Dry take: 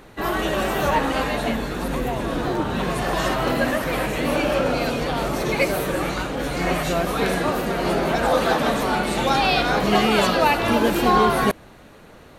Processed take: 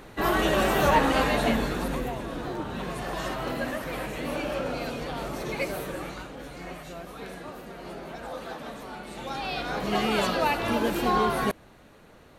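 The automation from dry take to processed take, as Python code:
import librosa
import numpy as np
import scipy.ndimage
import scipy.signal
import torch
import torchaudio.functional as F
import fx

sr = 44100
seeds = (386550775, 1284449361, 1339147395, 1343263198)

y = fx.gain(x, sr, db=fx.line((1.64, -0.5), (2.27, -9.5), (5.79, -9.5), (6.8, -18.0), (8.99, -18.0), (10.09, -7.0)))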